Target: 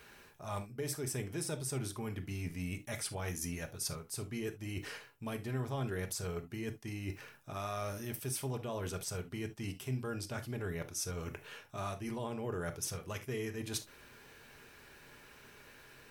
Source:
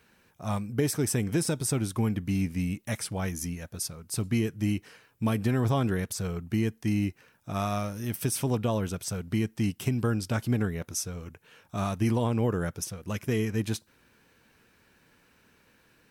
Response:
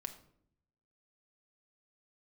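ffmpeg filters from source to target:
-filter_complex "[0:a]equalizer=f=200:t=o:w=0.42:g=-15,areverse,acompressor=threshold=0.00794:ratio=10,areverse[s0];[1:a]atrim=start_sample=2205,atrim=end_sample=3528[s1];[s0][s1]afir=irnorm=-1:irlink=0,volume=2.99"

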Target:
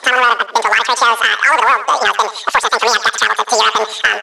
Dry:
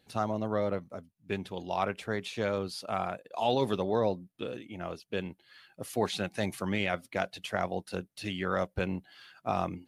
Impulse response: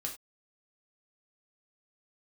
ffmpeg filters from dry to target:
-af "aresample=11025,acrusher=bits=5:mode=log:mix=0:aa=0.000001,aresample=44100,lowpass=1800,asetrate=103194,aresample=44100,highpass=800,acompressor=threshold=0.0126:ratio=10,asoftclip=type=hard:threshold=0.0335,aecho=1:1:85|170|255:0.133|0.0493|0.0183,asoftclip=type=tanh:threshold=0.0299,alimiter=level_in=59.6:limit=0.891:release=50:level=0:latency=1,volume=0.891"

